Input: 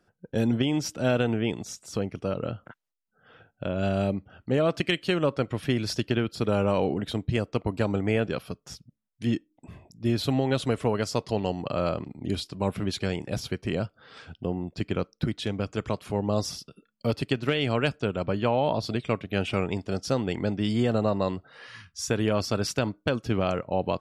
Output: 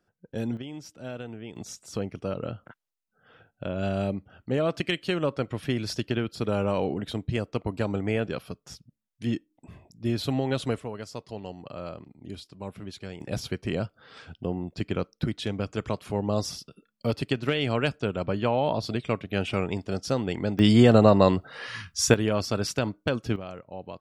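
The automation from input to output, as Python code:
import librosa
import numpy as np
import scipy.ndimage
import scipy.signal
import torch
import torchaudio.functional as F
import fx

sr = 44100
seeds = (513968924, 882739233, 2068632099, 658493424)

y = fx.gain(x, sr, db=fx.steps((0.0, -6.0), (0.57, -13.5), (1.56, -2.0), (10.8, -10.5), (13.21, -0.5), (20.59, 8.0), (22.14, -0.5), (23.36, -12.5)))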